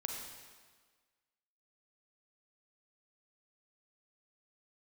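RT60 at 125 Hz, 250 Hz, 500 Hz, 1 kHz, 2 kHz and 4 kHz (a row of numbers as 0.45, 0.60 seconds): 1.3, 1.5, 1.5, 1.5, 1.5, 1.4 seconds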